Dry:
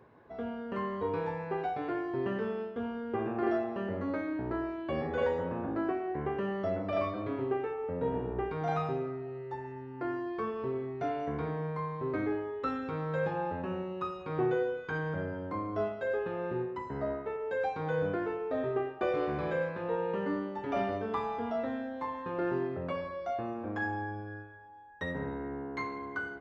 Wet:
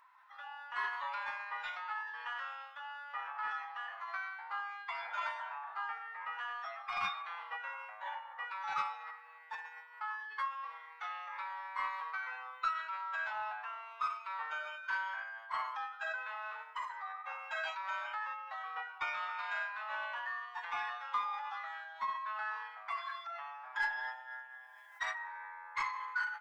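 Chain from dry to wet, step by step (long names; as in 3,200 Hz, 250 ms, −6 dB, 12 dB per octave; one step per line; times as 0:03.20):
Butterworth high-pass 950 Hz 36 dB per octave
soft clipping −28 dBFS, distortion −25 dB
phase-vocoder pitch shift with formants kept +3.5 semitones
level +4 dB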